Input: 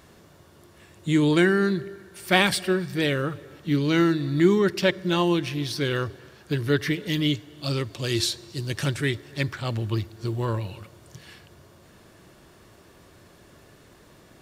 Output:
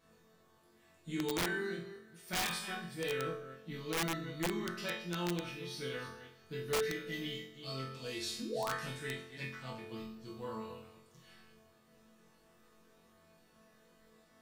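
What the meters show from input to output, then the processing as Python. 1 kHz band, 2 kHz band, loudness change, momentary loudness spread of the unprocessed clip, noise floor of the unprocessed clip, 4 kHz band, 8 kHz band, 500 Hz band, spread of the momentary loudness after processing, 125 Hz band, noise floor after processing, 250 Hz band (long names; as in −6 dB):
−11.0 dB, −12.5 dB, −14.5 dB, 12 LU, −53 dBFS, −12.5 dB, −8.0 dB, −14.0 dB, 12 LU, −18.5 dB, −67 dBFS, −18.0 dB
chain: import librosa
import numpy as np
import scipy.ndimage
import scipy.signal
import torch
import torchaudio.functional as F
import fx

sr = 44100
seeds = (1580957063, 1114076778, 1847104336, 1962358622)

p1 = fx.reverse_delay(x, sr, ms=196, wet_db=-11.0)
p2 = fx.spec_paint(p1, sr, seeds[0], shape='rise', start_s=8.39, length_s=0.35, low_hz=210.0, high_hz=2000.0, level_db=-25.0)
p3 = fx.resonator_bank(p2, sr, root=52, chord='sus4', decay_s=0.33)
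p4 = p3 + fx.room_flutter(p3, sr, wall_m=3.9, rt60_s=0.52, dry=0)
y = (np.mod(10.0 ** (27.0 / 20.0) * p4 + 1.0, 2.0) - 1.0) / 10.0 ** (27.0 / 20.0)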